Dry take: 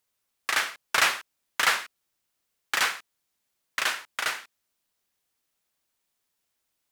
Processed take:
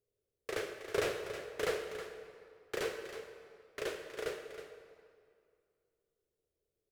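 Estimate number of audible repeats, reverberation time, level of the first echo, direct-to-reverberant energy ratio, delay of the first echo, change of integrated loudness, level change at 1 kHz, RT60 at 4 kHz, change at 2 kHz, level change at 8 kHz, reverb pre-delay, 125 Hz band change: 1, 2.3 s, −11.0 dB, 5.0 dB, 319 ms, −13.0 dB, −16.0 dB, 1.7 s, −17.0 dB, −17.0 dB, 24 ms, can't be measured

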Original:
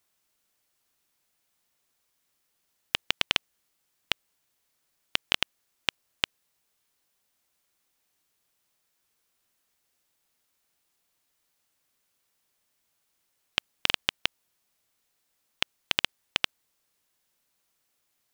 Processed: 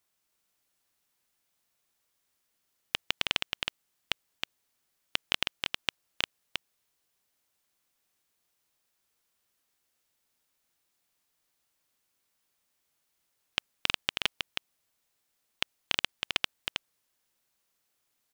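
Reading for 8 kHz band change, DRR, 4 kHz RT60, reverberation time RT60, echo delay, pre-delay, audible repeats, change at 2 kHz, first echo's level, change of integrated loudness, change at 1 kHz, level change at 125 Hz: −2.0 dB, no reverb audible, no reverb audible, no reverb audible, 318 ms, no reverb audible, 1, −2.0 dB, −4.5 dB, −3.5 dB, −2.0 dB, −2.0 dB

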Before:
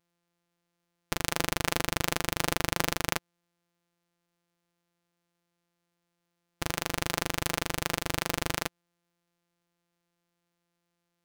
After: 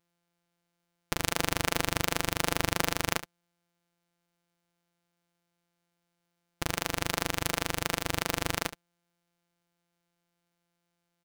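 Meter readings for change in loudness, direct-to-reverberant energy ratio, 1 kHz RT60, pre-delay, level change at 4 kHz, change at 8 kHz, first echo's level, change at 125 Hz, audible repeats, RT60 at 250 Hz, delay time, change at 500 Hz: 0.0 dB, no reverb audible, no reverb audible, no reverb audible, 0.0 dB, 0.0 dB, −13.5 dB, −0.5 dB, 1, no reverb audible, 71 ms, 0.0 dB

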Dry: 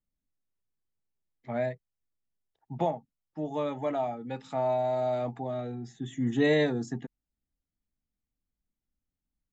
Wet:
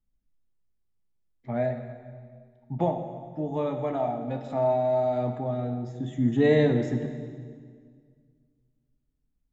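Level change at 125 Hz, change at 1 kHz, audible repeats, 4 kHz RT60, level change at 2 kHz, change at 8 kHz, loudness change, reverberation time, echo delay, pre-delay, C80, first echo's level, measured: +7.0 dB, +2.0 dB, no echo audible, 1.7 s, −1.0 dB, can't be measured, +3.5 dB, 1.9 s, no echo audible, 8 ms, 8.5 dB, no echo audible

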